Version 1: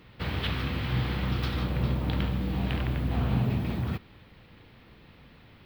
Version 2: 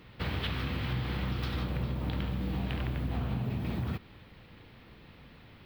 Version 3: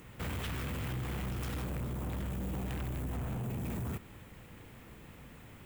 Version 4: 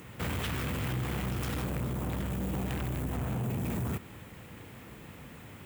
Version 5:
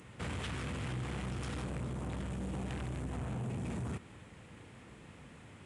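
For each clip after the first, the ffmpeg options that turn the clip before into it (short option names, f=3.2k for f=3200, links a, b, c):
-af "acompressor=threshold=-29dB:ratio=6"
-af "highshelf=f=5.7k:t=q:w=3:g=10.5,asoftclip=type=tanh:threshold=-35dB,volume=1.5dB"
-af "highpass=70,volume=5dB"
-af "aresample=22050,aresample=44100,volume=-5.5dB"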